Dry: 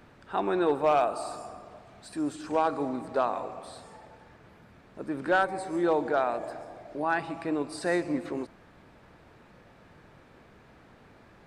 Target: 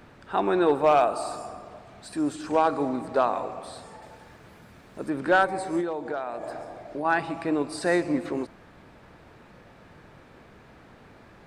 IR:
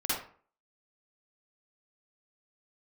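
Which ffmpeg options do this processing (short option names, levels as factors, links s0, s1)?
-filter_complex "[0:a]asettb=1/sr,asplit=3[s0][s1][s2];[s0]atrim=end=4.024[s3];[s1]atrim=start=4.02:end=5.1,asetpts=PTS-STARTPTS,afade=t=in:d=0.004:c=qsin,afade=t=out:st=1.076:d=0.004:c=qsin,highshelf=f=5100:g=10[s4];[s2]atrim=start=5.096[s5];[s3][s4]acrossfade=d=0.004:c1=hsin:c2=qsin[s6];[s6][s5]acrossfade=d=0.004:c1=qsin:c2=hsin,asettb=1/sr,asplit=3[s7][s8][s9];[s7]atrim=end=5.804[s10];[s8]atrim=start=5.8:end=7.05,asetpts=PTS-STARTPTS,afade=t=in:d=0.004:c=qsin,afade=t=out:st=1.246:d=0.004:c=qsin,acompressor=threshold=0.0251:ratio=6[s11];[s9]atrim=start=7.046[s12];[s10][s11]acrossfade=d=0.004:c1=hsin:c2=qsin[s13];[s13][s12]acrossfade=d=0.004:c1=qsin:c2=hsin,volume=1.58"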